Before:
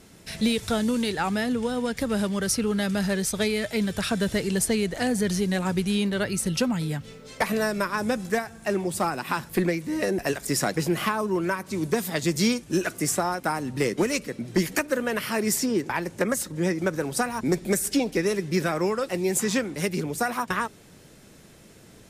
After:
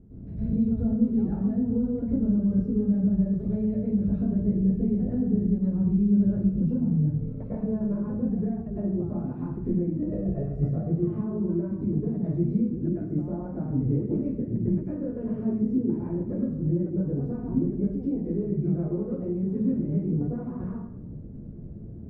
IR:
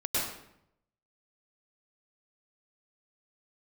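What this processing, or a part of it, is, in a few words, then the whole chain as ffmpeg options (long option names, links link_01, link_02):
television next door: -filter_complex "[0:a]asettb=1/sr,asplit=3[link_01][link_02][link_03];[link_01]atrim=end=9.974[link_04];[link_02]atrim=start=9.97:end=10.7,asetpts=PTS-STARTPTS,afade=type=in:duration=0.004:curve=qsin,afade=type=out:start_time=0.726:duration=0.004:curve=qsin,aecho=1:1:1.6:0.65,atrim=end_sample=32193[link_05];[link_03]atrim=start=10.696[link_06];[link_04][link_05]acrossfade=duration=0.004:curve1=hsin:curve2=qsin[link_07];[link_07][link_06]acrossfade=duration=0.004:curve1=qsin:curve2=hsin,lowshelf=frequency=180:gain=6,acompressor=threshold=-31dB:ratio=4,lowpass=250[link_08];[1:a]atrim=start_sample=2205[link_09];[link_08][link_09]afir=irnorm=-1:irlink=0,volume=1.5dB"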